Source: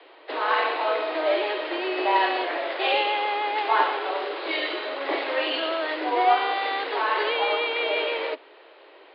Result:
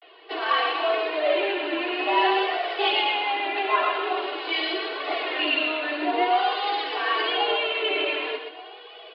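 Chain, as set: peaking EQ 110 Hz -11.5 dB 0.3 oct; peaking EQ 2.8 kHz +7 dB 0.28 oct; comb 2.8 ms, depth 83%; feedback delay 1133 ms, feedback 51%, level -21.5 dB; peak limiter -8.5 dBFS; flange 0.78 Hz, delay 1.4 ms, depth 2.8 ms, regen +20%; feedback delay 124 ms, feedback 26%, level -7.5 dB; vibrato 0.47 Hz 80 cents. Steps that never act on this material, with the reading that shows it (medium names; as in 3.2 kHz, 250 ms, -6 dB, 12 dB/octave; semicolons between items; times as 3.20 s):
peaking EQ 110 Hz: input has nothing below 250 Hz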